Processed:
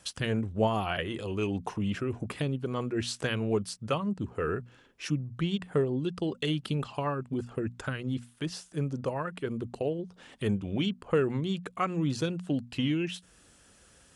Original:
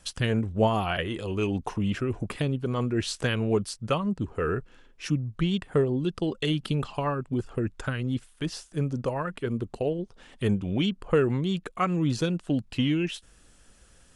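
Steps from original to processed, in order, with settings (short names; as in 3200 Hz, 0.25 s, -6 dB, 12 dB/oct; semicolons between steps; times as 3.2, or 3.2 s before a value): in parallel at -3 dB: compressor, threshold -41 dBFS, peak gain reduction 21.5 dB; on the sum: HPF 72 Hz; notches 60/120/180/240 Hz; gain -4 dB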